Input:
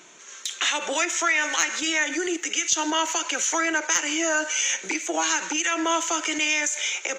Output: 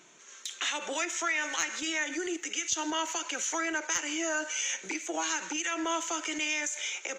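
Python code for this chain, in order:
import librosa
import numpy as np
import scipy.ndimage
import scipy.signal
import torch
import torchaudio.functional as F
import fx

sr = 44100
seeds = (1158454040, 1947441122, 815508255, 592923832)

y = fx.low_shelf(x, sr, hz=130.0, db=9.5)
y = F.gain(torch.from_numpy(y), -8.0).numpy()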